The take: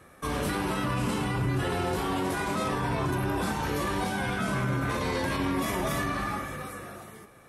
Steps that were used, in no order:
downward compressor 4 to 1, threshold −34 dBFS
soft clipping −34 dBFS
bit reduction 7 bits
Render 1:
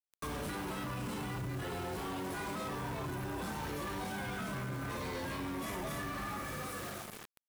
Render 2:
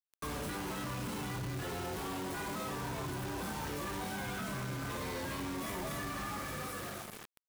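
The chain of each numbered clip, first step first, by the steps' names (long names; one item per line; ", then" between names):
bit reduction, then downward compressor, then soft clipping
downward compressor, then bit reduction, then soft clipping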